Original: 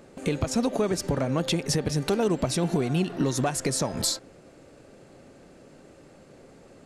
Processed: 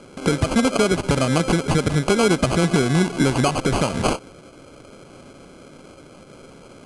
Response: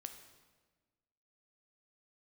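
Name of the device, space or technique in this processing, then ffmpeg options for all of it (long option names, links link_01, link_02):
crushed at another speed: -af "asetrate=88200,aresample=44100,acrusher=samples=12:mix=1:aa=0.000001,asetrate=22050,aresample=44100,volume=7dB"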